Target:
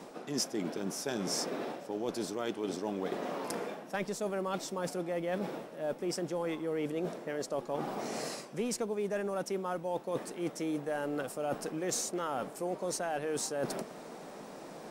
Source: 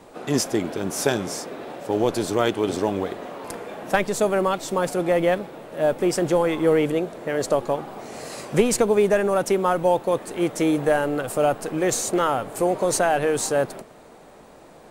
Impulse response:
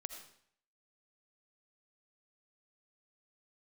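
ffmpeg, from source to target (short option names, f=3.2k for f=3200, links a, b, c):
-af "lowshelf=f=120:t=q:w=1.5:g=-12.5,areverse,acompressor=threshold=-33dB:ratio=6,areverse,equalizer=f=5.4k:t=o:w=0.32:g=7"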